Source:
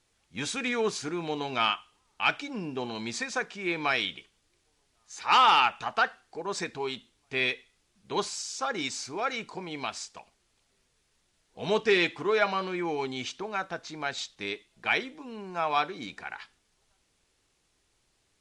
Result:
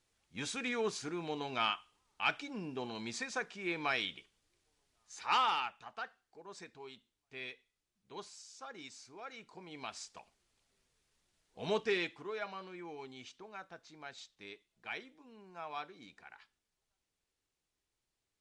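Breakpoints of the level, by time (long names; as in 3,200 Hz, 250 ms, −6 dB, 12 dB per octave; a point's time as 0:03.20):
0:05.24 −7 dB
0:05.78 −17.5 dB
0:09.29 −17.5 dB
0:10.15 −6.5 dB
0:11.69 −6.5 dB
0:12.34 −16 dB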